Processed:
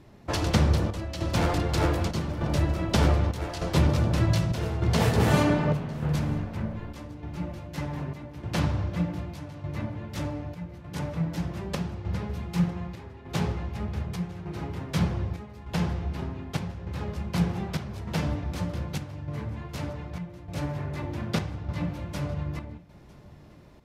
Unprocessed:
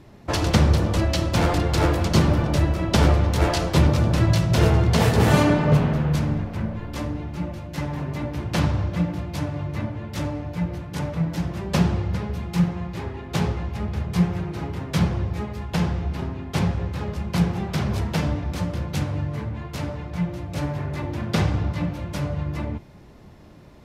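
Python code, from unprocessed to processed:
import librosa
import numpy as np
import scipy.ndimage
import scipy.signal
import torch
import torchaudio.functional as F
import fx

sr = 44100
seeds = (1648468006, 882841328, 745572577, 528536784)

p1 = fx.chopper(x, sr, hz=0.83, depth_pct=60, duty_pct=75)
p2 = p1 + fx.echo_single(p1, sr, ms=955, db=-23.0, dry=0)
y = F.gain(torch.from_numpy(p2), -4.5).numpy()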